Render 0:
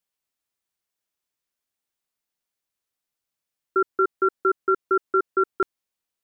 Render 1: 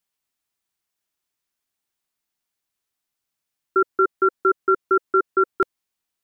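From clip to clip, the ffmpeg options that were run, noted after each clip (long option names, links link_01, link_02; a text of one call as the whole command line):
ffmpeg -i in.wav -af "equalizer=frequency=520:width=5.9:gain=-7,volume=3dB" out.wav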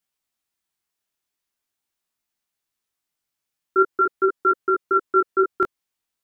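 ffmpeg -i in.wav -af "flanger=delay=16.5:depth=5.7:speed=0.43,volume=2.5dB" out.wav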